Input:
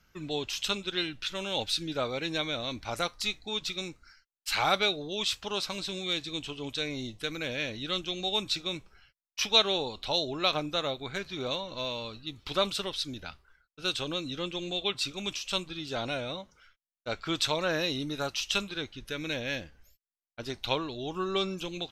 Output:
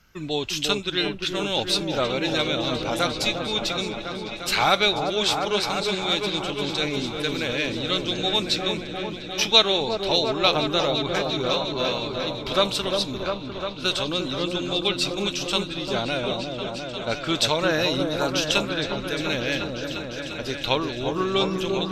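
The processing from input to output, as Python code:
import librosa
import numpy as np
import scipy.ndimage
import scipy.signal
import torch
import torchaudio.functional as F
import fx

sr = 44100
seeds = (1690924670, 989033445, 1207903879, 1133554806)

y = fx.echo_opening(x, sr, ms=351, hz=750, octaves=1, feedback_pct=70, wet_db=-3)
y = y * 10.0 ** (6.5 / 20.0)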